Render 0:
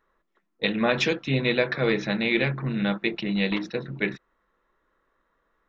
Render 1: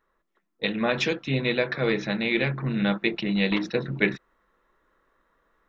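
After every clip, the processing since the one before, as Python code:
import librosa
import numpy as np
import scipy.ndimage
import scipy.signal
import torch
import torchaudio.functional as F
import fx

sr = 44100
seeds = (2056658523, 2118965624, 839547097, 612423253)

y = fx.rider(x, sr, range_db=10, speed_s=0.5)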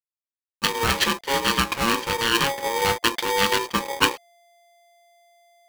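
y = fx.dynamic_eq(x, sr, hz=3100.0, q=0.85, threshold_db=-39.0, ratio=4.0, max_db=5)
y = fx.backlash(y, sr, play_db=-37.5)
y = y * np.sign(np.sin(2.0 * np.pi * 690.0 * np.arange(len(y)) / sr))
y = y * librosa.db_to_amplitude(1.5)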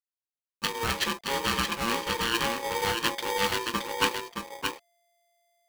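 y = x + 10.0 ** (-5.0 / 20.0) * np.pad(x, (int(621 * sr / 1000.0), 0))[:len(x)]
y = y * librosa.db_to_amplitude(-7.0)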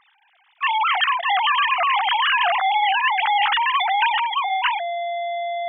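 y = fx.sine_speech(x, sr)
y = fx.env_flatten(y, sr, amount_pct=70)
y = y * librosa.db_to_amplitude(4.5)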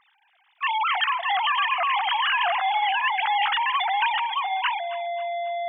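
y = fx.echo_feedback(x, sr, ms=271, feedback_pct=39, wet_db=-16.5)
y = y * librosa.db_to_amplitude(-4.0)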